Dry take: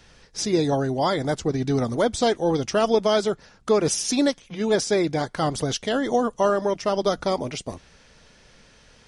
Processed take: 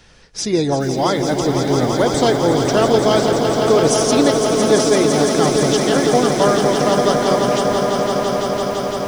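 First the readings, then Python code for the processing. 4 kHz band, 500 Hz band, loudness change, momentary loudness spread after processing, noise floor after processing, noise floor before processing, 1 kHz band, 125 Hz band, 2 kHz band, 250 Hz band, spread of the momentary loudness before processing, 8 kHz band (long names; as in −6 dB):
+8.0 dB, +8.0 dB, +7.5 dB, 5 LU, −24 dBFS, −54 dBFS, +8.5 dB, +8.0 dB, +8.0 dB, +8.0 dB, 7 LU, +8.0 dB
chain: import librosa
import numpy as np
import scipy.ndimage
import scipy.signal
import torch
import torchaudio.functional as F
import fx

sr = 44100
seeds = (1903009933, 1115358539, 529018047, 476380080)

y = fx.echo_swell(x, sr, ms=169, loudest=5, wet_db=-8.0)
y = fx.echo_crushed(y, sr, ms=435, feedback_pct=80, bits=6, wet_db=-13.5)
y = y * librosa.db_to_amplitude(4.0)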